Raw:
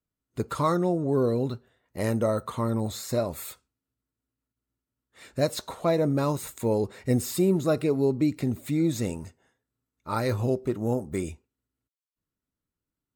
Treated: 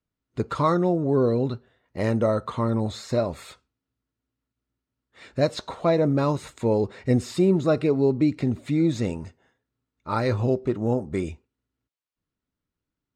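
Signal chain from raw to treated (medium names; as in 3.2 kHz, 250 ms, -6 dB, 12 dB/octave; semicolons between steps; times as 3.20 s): low-pass 4.8 kHz 12 dB/octave; trim +3 dB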